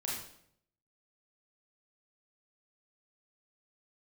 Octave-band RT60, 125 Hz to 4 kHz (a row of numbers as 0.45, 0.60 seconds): 0.90, 0.80, 0.75, 0.60, 0.60, 0.55 seconds